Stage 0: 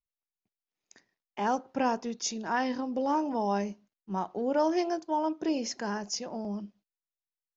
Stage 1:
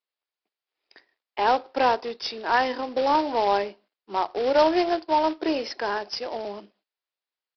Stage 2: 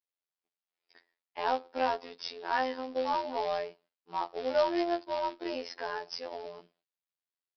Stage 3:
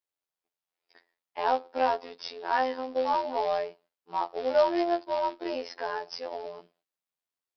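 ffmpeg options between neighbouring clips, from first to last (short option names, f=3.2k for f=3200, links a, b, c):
-af "highpass=f=350:w=0.5412,highpass=f=350:w=1.3066,aresample=11025,acrusher=bits=3:mode=log:mix=0:aa=0.000001,aresample=44100,volume=8dB"
-af "afftfilt=real='hypot(re,im)*cos(PI*b)':imag='0':win_size=2048:overlap=0.75,volume=-5.5dB"
-af "equalizer=f=680:w=0.66:g=4.5"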